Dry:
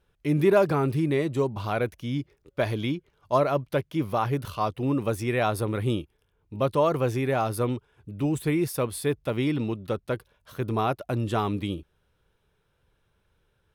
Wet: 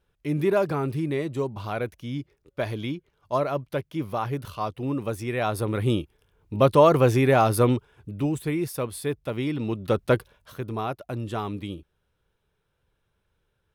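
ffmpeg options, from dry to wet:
-af "volume=7.08,afade=t=in:st=5.34:d=1.2:silence=0.354813,afade=t=out:st=7.76:d=0.63:silence=0.375837,afade=t=in:st=9.59:d=0.55:silence=0.298538,afade=t=out:st=10.14:d=0.49:silence=0.237137"

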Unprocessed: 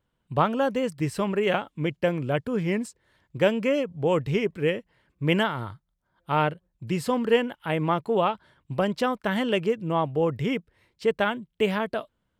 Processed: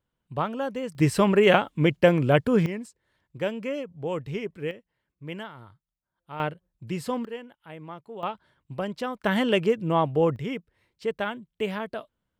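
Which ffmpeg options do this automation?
-af "asetnsamples=n=441:p=0,asendcmd='0.95 volume volume 6dB;2.66 volume volume -7dB;4.71 volume volume -14dB;6.4 volume volume -4dB;7.25 volume volume -16dB;8.23 volume volume -6dB;9.21 volume volume 2dB;10.36 volume volume -5dB',volume=0.531"

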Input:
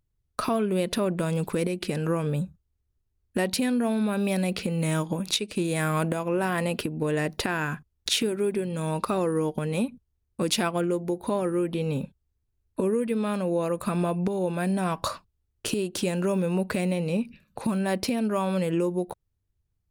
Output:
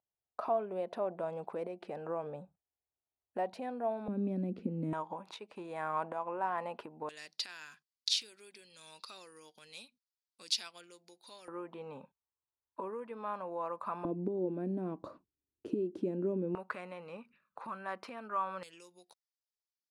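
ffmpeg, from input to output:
-af "asetnsamples=n=441:p=0,asendcmd='4.08 bandpass f 270;4.93 bandpass f 900;7.09 bandpass f 4700;11.48 bandpass f 980;14.05 bandpass f 310;16.55 bandpass f 1200;18.63 bandpass f 5000',bandpass=f=740:t=q:w=3.4:csg=0"

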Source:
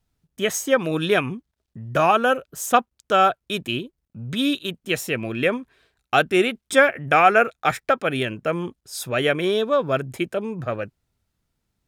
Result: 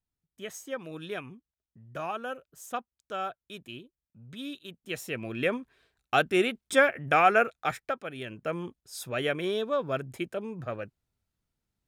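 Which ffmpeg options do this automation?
-af "volume=1.33,afade=t=in:st=4.61:d=0.97:silence=0.281838,afade=t=out:st=7.37:d=0.78:silence=0.281838,afade=t=in:st=8.15:d=0.31:silence=0.375837"

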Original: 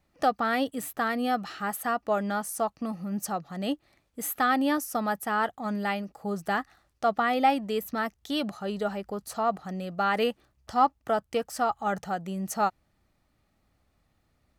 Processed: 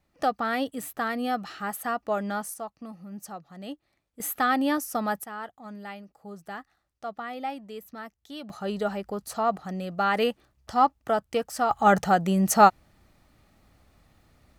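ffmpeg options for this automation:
-af "asetnsamples=n=441:p=0,asendcmd='2.54 volume volume -8.5dB;4.2 volume volume 0.5dB;5.24 volume volume -10.5dB;8.5 volume volume 1.5dB;11.71 volume volume 10dB',volume=0.891"

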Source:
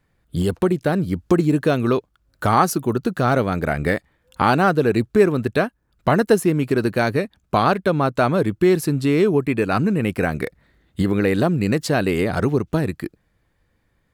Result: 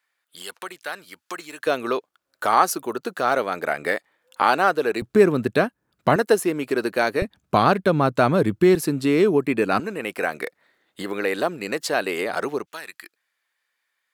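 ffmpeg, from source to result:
-af "asetnsamples=n=441:p=0,asendcmd='1.67 highpass f 480;5.02 highpass f 150;6.16 highpass f 370;7.22 highpass f 100;8.75 highpass f 210;9.8 highpass f 500;12.66 highpass f 1500',highpass=1300"

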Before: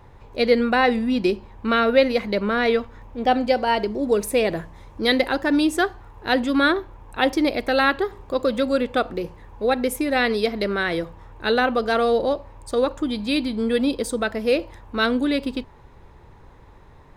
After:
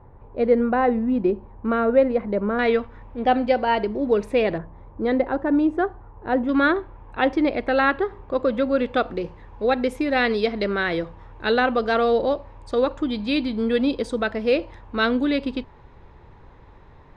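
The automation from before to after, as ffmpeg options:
-af "asetnsamples=n=441:p=0,asendcmd='2.59 lowpass f 2900;4.58 lowpass f 1100;6.49 lowpass f 2400;8.79 lowpass f 4200',lowpass=1100"

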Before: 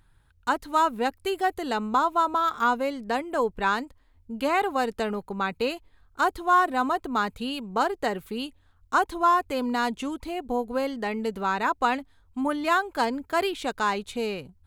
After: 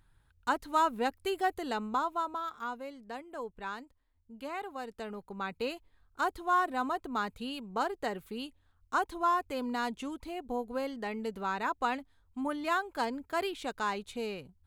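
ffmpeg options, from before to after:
-af "volume=1.33,afade=t=out:st=1.47:d=1.11:silence=0.316228,afade=t=in:st=4.85:d=0.86:silence=0.421697"

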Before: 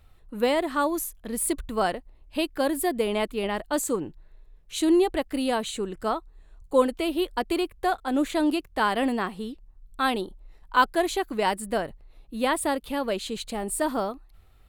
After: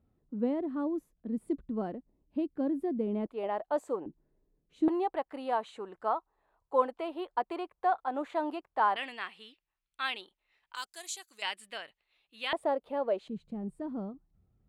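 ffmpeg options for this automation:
-af "asetnsamples=n=441:p=0,asendcmd='3.26 bandpass f 700;4.06 bandpass f 260;4.88 bandpass f 880;8.96 bandpass f 2500;10.75 bandpass f 6900;11.42 bandpass f 2800;12.53 bandpass f 620;13.28 bandpass f 170',bandpass=f=240:t=q:w=1.9:csg=0"

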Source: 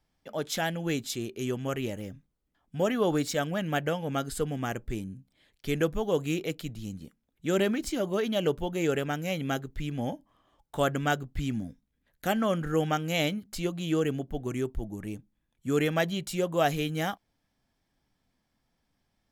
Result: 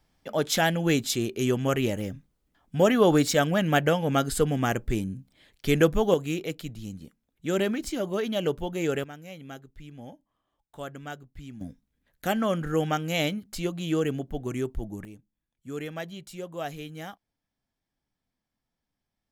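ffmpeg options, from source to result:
-af "asetnsamples=n=441:p=0,asendcmd='6.14 volume volume 0dB;9.04 volume volume -11.5dB;11.61 volume volume 1dB;15.05 volume volume -9dB',volume=2.11"

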